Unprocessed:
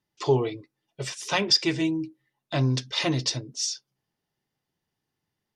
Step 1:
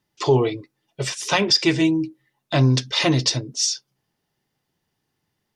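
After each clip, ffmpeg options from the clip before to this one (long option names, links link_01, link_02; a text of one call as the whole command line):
ffmpeg -i in.wav -af "alimiter=level_in=13dB:limit=-1dB:release=50:level=0:latency=1,volume=-6dB" out.wav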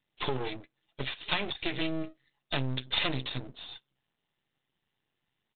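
ffmpeg -i in.wav -af "acompressor=threshold=-20dB:ratio=12,aresample=8000,aeval=exprs='max(val(0),0)':channel_layout=same,aresample=44100,crystalizer=i=4.5:c=0,volume=-5dB" out.wav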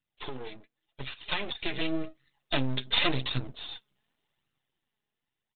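ffmpeg -i in.wav -af "dynaudnorm=framelen=210:gausssize=13:maxgain=12.5dB,flanger=delay=0.7:depth=4.2:regen=48:speed=0.89:shape=sinusoidal,volume=-3dB" out.wav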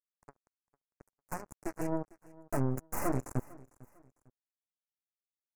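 ffmpeg -i in.wav -af "acrusher=bits=3:mix=0:aa=0.5,asuperstop=centerf=3400:order=4:qfactor=0.5,aecho=1:1:451|902:0.0841|0.0286,volume=-3.5dB" out.wav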